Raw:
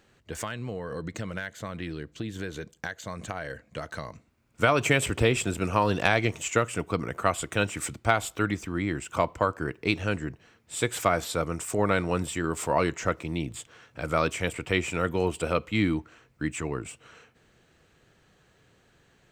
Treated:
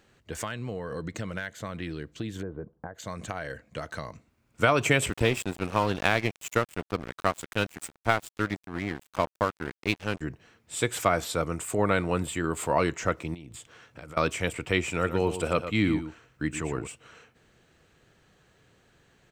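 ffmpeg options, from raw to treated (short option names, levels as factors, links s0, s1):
-filter_complex "[0:a]asplit=3[s0][s1][s2];[s0]afade=t=out:st=2.41:d=0.02[s3];[s1]lowpass=f=1100:w=0.5412,lowpass=f=1100:w=1.3066,afade=t=in:st=2.41:d=0.02,afade=t=out:st=2.94:d=0.02[s4];[s2]afade=t=in:st=2.94:d=0.02[s5];[s3][s4][s5]amix=inputs=3:normalize=0,asettb=1/sr,asplit=3[s6][s7][s8];[s6]atrim=end=5.104[s9];[s7]atrim=start=5.1:end=10.21,asetpts=PTS-STARTPTS,afade=t=in:d=0.004:c=qsin,afade=t=out:st=5.106:d=0.004:c=qsin,aeval=exprs='sgn(val(0))*max(abs(val(0))-0.0237,0)':c=same[s10];[s8]atrim=start=10.206[s11];[s9][s10]acrossfade=d=0.004:c1=hsin:c2=qsin[s12];[s12][s11]acrossfade=d=0.004:c1=qsin:c2=hsin,asettb=1/sr,asplit=3[s13][s14][s15];[s13]atrim=end=11.544[s16];[s14]atrim=start=11.54:end=12.66,asetpts=PTS-STARTPTS,afade=t=in:d=0.004:c=qsin,afade=t=out:st=1.116:d=0.004:c=qsin,equalizer=f=5600:t=o:w=0.23:g=-10[s17];[s15]atrim=start=12.656[s18];[s16][s17]acrossfade=d=0.004:c1=hsin:c2=qsin[s19];[s19][s18]acrossfade=d=0.004:c1=qsin:c2=hsin,asettb=1/sr,asplit=3[s20][s21][s22];[s20]atrim=end=13.344[s23];[s21]atrim=start=13.34:end=14.17,asetpts=PTS-STARTPTS,afade=t=in:d=0.004:c=qsin,afade=t=out:st=0.826:d=0.004:c=qsin,acompressor=threshold=0.0112:ratio=16:attack=3.2:release=140:knee=1:detection=peak[s24];[s22]atrim=start=14.166[s25];[s23][s24]acrossfade=d=0.004:c1=hsin:c2=qsin[s26];[s26][s25]acrossfade=d=0.004:c1=qsin:c2=hsin,asplit=3[s27][s28][s29];[s27]afade=t=out:st=15.01:d=0.02[s30];[s28]aecho=1:1:116:0.299,afade=t=in:st=15.01:d=0.02,afade=t=out:st=16.86:d=0.02[s31];[s29]afade=t=in:st=16.86:d=0.02[s32];[s30][s31][s32]amix=inputs=3:normalize=0"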